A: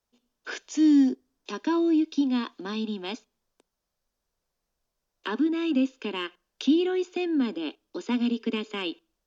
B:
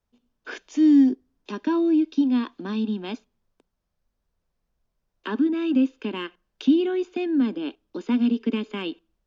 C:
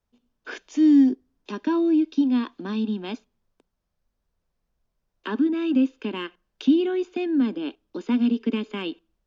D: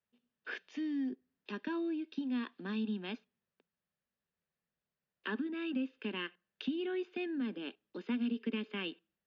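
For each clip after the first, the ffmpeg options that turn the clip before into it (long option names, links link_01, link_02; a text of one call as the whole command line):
ffmpeg -i in.wav -af "bass=frequency=250:gain=9,treble=frequency=4000:gain=-8" out.wav
ffmpeg -i in.wav -af anull out.wav
ffmpeg -i in.wav -af "acompressor=threshold=-21dB:ratio=3,highpass=150,equalizer=frequency=180:width_type=q:width=4:gain=3,equalizer=frequency=300:width_type=q:width=4:gain=-7,equalizer=frequency=680:width_type=q:width=4:gain=-3,equalizer=frequency=970:width_type=q:width=4:gain=-4,equalizer=frequency=1800:width_type=q:width=4:gain=7,equalizer=frequency=2700:width_type=q:width=4:gain=4,lowpass=frequency=4600:width=0.5412,lowpass=frequency=4600:width=1.3066,volume=-8.5dB" out.wav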